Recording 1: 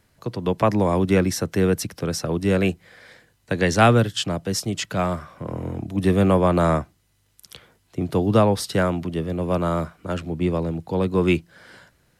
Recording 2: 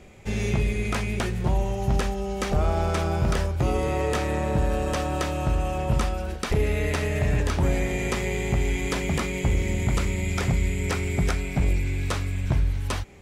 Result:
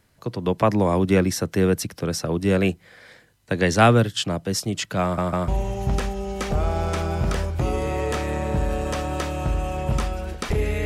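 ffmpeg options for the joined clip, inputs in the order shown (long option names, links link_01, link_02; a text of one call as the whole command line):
ffmpeg -i cue0.wav -i cue1.wav -filter_complex "[0:a]apad=whole_dur=10.85,atrim=end=10.85,asplit=3[link_01][link_02][link_03];[link_01]atrim=end=5.182[link_04];[link_02]atrim=start=5.028:end=5.182[link_05];[link_03]atrim=start=5.028:end=5.182[link_06];[1:a]atrim=start=1.488:end=6.86[link_07];[link_04][link_05]acrossfade=duration=0.004:curve1=hsin:curve2=hsin[link_08];[link_08][link_06]acrossfade=duration=0.004:curve1=hsin:curve2=hsin[link_09];[link_09][link_07]acrossfade=duration=0.004:curve1=hsin:curve2=hsin" out.wav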